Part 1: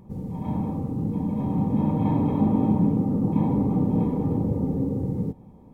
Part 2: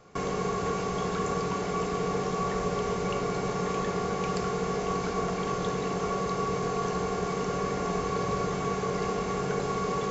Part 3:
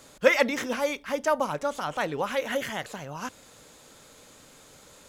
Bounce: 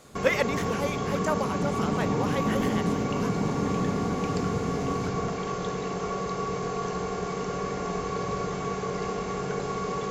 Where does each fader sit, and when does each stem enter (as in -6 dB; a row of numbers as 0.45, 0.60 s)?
-7.0, -1.0, -4.0 dB; 0.05, 0.00, 0.00 s